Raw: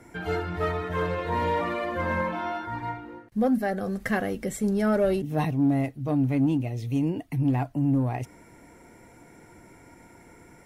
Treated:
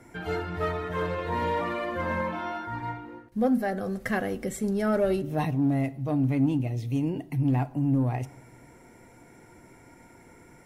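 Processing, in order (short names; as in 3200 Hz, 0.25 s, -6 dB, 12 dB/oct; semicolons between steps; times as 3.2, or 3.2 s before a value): reverb RT60 0.85 s, pre-delay 8 ms, DRR 14 dB; gain -1.5 dB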